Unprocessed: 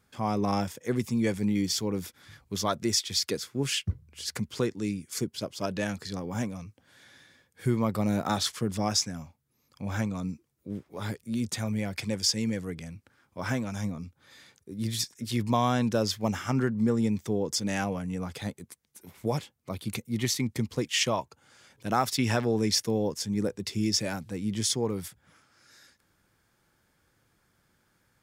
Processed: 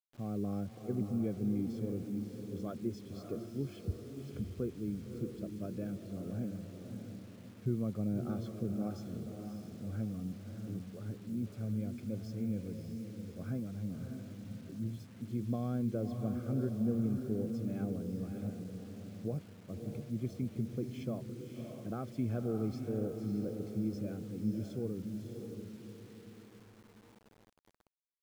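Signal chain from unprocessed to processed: boxcar filter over 47 samples; echo that smears into a reverb 602 ms, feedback 44%, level -5.5 dB; bit crusher 9-bit; trim -6.5 dB

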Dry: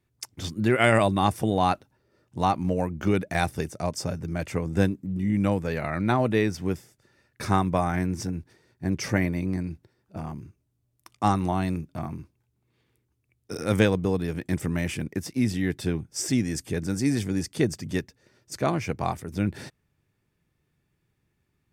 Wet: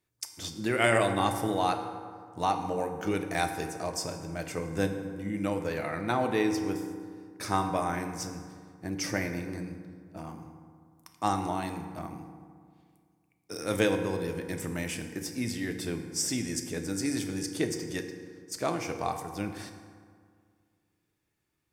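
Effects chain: tone controls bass -8 dB, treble +5 dB; on a send: reverberation RT60 2.0 s, pre-delay 3 ms, DRR 5 dB; on the sum: trim -4.5 dB

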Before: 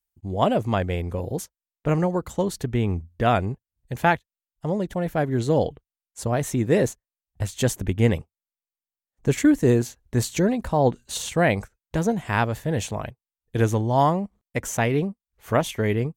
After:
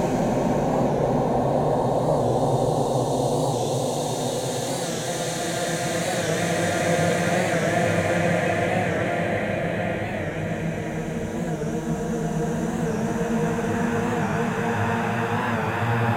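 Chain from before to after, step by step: Paulstretch 8.9×, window 1.00 s, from 10.58 s; warped record 45 rpm, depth 100 cents

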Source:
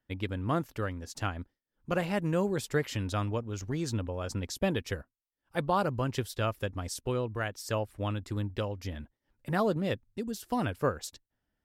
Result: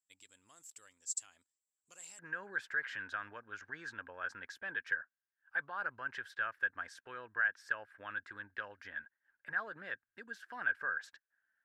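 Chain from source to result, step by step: peak limiter -26.5 dBFS, peak gain reduction 10 dB; band-pass filter 7.6 kHz, Q 15, from 2.19 s 1.6 kHz; trim +17.5 dB

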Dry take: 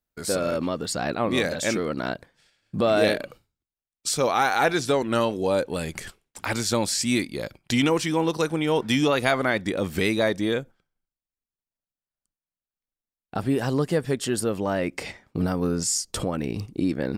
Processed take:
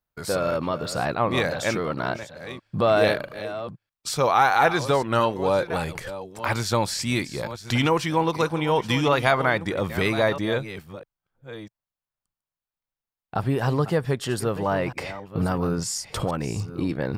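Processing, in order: chunks repeated in reverse 649 ms, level -13 dB; ten-band graphic EQ 125 Hz +6 dB, 250 Hz -5 dB, 1 kHz +6 dB, 8 kHz -6 dB

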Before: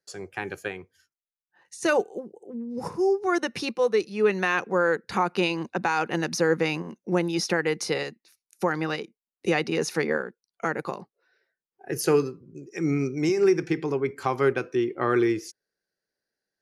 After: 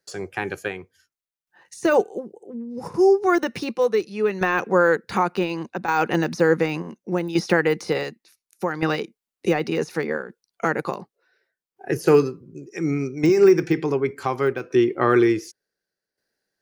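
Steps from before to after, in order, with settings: de-esser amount 100%; tremolo saw down 0.68 Hz, depth 65%; trim +7.5 dB

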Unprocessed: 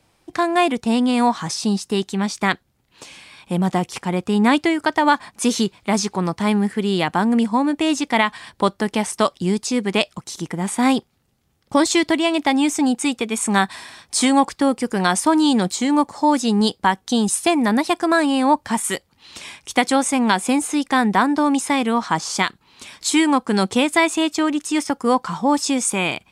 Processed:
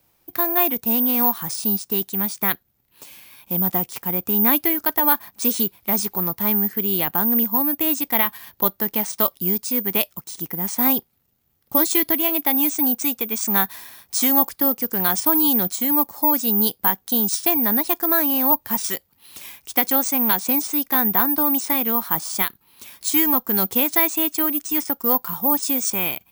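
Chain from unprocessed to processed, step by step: careless resampling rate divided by 3×, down none, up zero stuff; trim -6.5 dB

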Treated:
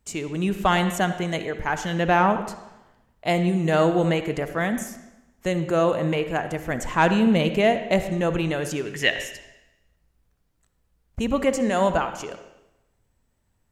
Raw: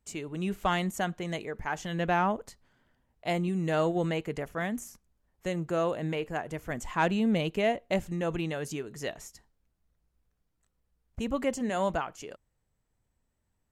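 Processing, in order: 8.85–9.25 s: high-order bell 2.4 kHz +12.5 dB 1.3 oct; reverberation RT60 0.95 s, pre-delay 45 ms, DRR 9.5 dB; trim +7.5 dB

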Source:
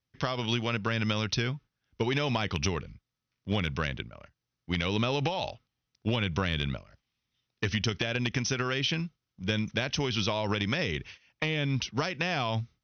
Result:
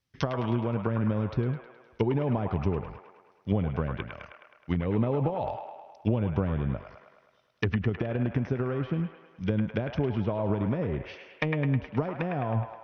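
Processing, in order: low-pass that closes with the level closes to 640 Hz, closed at -26 dBFS; feedback echo behind a band-pass 105 ms, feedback 62%, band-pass 1.4 kHz, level -3 dB; trim +3.5 dB

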